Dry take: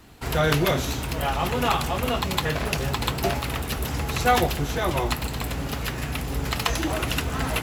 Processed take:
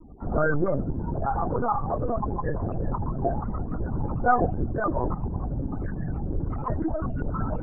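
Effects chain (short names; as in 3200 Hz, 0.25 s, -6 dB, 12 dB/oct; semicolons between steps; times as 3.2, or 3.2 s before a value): careless resampling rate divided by 4×, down none, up zero stuff; loudest bins only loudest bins 64; in parallel at -3.5 dB: soft clip -28 dBFS, distortion -3 dB; on the sum: Chebyshev low-pass 1600 Hz, order 5; LPC vocoder at 8 kHz pitch kept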